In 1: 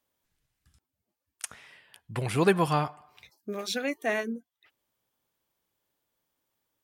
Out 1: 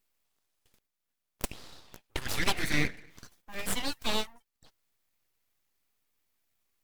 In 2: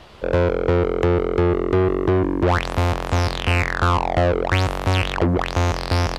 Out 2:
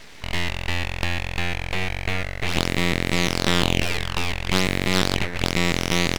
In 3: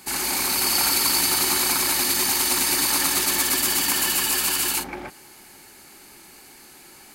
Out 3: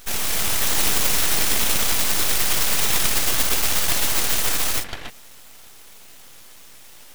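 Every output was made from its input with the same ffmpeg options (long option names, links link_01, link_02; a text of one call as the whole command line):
ffmpeg -i in.wav -af "afftfilt=real='re*lt(hypot(re,im),0.282)':imag='im*lt(hypot(re,im),0.282)':win_size=1024:overlap=0.75,highpass=frequency=1000:width_type=q:width=1.7,aeval=exprs='abs(val(0))':channel_layout=same,volume=4dB" out.wav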